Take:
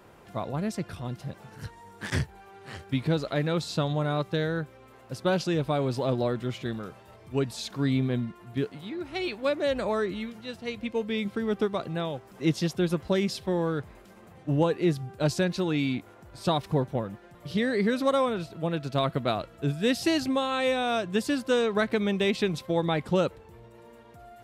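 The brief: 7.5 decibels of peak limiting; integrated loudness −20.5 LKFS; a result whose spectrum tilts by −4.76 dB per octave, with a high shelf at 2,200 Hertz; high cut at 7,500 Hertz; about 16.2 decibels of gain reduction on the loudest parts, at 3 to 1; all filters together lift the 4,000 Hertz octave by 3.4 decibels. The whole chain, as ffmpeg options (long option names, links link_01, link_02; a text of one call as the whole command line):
ffmpeg -i in.wav -af "lowpass=7500,highshelf=frequency=2200:gain=-4.5,equalizer=frequency=4000:width_type=o:gain=8,acompressor=threshold=-43dB:ratio=3,volume=24dB,alimiter=limit=-10.5dB:level=0:latency=1" out.wav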